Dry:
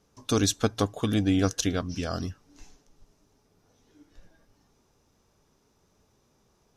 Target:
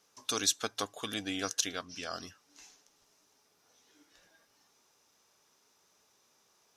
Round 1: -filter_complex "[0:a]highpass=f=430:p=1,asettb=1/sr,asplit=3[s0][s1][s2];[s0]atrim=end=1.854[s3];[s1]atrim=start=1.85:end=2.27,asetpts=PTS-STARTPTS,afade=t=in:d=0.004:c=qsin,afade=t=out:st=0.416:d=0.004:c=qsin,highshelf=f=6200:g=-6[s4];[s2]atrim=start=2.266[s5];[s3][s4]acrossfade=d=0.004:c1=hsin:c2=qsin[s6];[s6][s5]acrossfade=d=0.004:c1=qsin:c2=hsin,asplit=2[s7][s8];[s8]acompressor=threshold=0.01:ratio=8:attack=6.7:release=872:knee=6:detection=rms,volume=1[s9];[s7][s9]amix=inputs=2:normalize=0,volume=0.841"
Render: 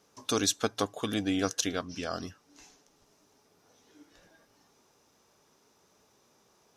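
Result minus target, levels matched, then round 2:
500 Hz band +5.0 dB
-filter_complex "[0:a]highpass=f=1600:p=1,asettb=1/sr,asplit=3[s0][s1][s2];[s0]atrim=end=1.854[s3];[s1]atrim=start=1.85:end=2.27,asetpts=PTS-STARTPTS,afade=t=in:d=0.004:c=qsin,afade=t=out:st=0.416:d=0.004:c=qsin,highshelf=f=6200:g=-6[s4];[s2]atrim=start=2.266[s5];[s3][s4]acrossfade=d=0.004:c1=hsin:c2=qsin[s6];[s6][s5]acrossfade=d=0.004:c1=qsin:c2=hsin,asplit=2[s7][s8];[s8]acompressor=threshold=0.01:ratio=8:attack=6.7:release=872:knee=6:detection=rms,volume=1[s9];[s7][s9]amix=inputs=2:normalize=0,volume=0.841"

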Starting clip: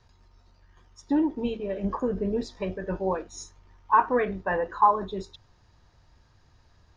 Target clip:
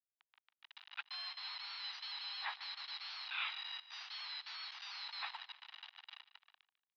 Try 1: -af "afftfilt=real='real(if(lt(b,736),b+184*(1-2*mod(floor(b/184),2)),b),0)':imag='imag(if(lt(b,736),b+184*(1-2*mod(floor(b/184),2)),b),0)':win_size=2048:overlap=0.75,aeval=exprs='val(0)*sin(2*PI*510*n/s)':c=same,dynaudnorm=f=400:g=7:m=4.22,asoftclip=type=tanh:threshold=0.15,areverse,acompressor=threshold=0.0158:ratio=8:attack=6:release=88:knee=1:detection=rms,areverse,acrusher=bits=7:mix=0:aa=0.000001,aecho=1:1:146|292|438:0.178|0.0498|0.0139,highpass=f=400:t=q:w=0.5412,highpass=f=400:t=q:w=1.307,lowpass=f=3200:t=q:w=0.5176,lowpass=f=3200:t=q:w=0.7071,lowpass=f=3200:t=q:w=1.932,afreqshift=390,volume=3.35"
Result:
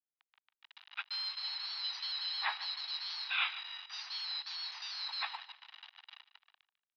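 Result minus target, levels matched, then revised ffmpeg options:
compression: peak gain reduction -7.5 dB
-af "afftfilt=real='real(if(lt(b,736),b+184*(1-2*mod(floor(b/184),2)),b),0)':imag='imag(if(lt(b,736),b+184*(1-2*mod(floor(b/184),2)),b),0)':win_size=2048:overlap=0.75,aeval=exprs='val(0)*sin(2*PI*510*n/s)':c=same,dynaudnorm=f=400:g=7:m=4.22,asoftclip=type=tanh:threshold=0.15,areverse,acompressor=threshold=0.00596:ratio=8:attack=6:release=88:knee=1:detection=rms,areverse,acrusher=bits=7:mix=0:aa=0.000001,aecho=1:1:146|292|438:0.178|0.0498|0.0139,highpass=f=400:t=q:w=0.5412,highpass=f=400:t=q:w=1.307,lowpass=f=3200:t=q:w=0.5176,lowpass=f=3200:t=q:w=0.7071,lowpass=f=3200:t=q:w=1.932,afreqshift=390,volume=3.35"

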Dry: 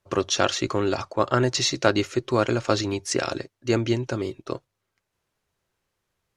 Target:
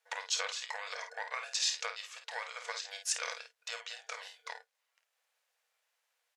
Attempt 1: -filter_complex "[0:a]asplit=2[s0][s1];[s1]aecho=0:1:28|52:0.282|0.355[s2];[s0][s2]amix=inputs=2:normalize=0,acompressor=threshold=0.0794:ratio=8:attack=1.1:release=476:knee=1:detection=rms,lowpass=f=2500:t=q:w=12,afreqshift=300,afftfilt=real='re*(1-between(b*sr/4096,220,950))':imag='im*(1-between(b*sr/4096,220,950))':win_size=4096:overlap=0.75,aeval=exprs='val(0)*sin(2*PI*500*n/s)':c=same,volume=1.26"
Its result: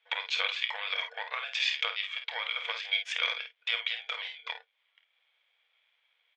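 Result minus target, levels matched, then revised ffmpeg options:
2 kHz band +2.5 dB
-filter_complex "[0:a]asplit=2[s0][s1];[s1]aecho=0:1:28|52:0.282|0.355[s2];[s0][s2]amix=inputs=2:normalize=0,acompressor=threshold=0.0794:ratio=8:attack=1.1:release=476:knee=1:detection=rms,afreqshift=300,afftfilt=real='re*(1-between(b*sr/4096,220,950))':imag='im*(1-between(b*sr/4096,220,950))':win_size=4096:overlap=0.75,aeval=exprs='val(0)*sin(2*PI*500*n/s)':c=same,volume=1.26"

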